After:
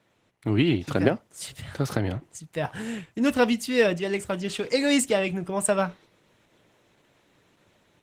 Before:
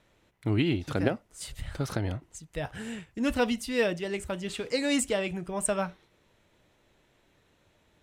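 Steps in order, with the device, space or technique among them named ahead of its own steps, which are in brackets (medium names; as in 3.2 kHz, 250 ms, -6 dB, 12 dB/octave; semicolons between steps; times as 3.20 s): 2.39–2.82 s: dynamic bell 950 Hz, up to +6 dB, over -57 dBFS, Q 3.7; video call (high-pass 100 Hz 24 dB/octave; level rider gain up to 5.5 dB; Opus 16 kbps 48 kHz)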